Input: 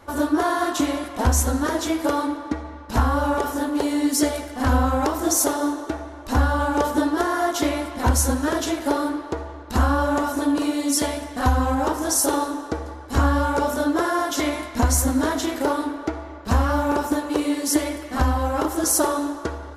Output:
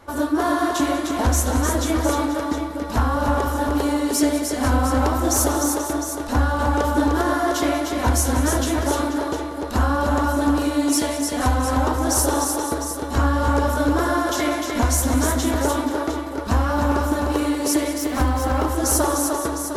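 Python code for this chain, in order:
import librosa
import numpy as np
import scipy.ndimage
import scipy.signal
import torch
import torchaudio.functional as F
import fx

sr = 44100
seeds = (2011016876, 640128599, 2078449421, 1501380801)

y = fx.echo_multitap(x, sr, ms=(190, 303, 485, 707), db=(-14.5, -5.0, -13.0, -10.0))
y = 10.0 ** (-6.0 / 20.0) * np.tanh(y / 10.0 ** (-6.0 / 20.0))
y = fx.resample_linear(y, sr, factor=2, at=(17.98, 18.63))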